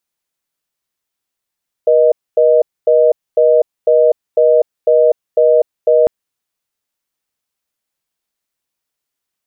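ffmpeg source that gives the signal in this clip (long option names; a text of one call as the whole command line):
ffmpeg -f lavfi -i "aevalsrc='0.335*(sin(2*PI*480*t)+sin(2*PI*620*t))*clip(min(mod(t,0.5),0.25-mod(t,0.5))/0.005,0,1)':duration=4.2:sample_rate=44100" out.wav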